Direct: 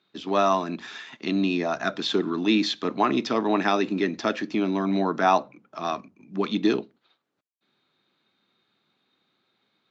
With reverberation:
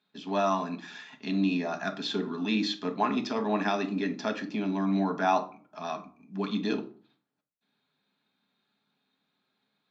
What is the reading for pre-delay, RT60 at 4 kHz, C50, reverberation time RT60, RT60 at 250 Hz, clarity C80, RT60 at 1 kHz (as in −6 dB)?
4 ms, 0.25 s, 14.0 dB, 0.45 s, 0.55 s, 19.0 dB, 0.40 s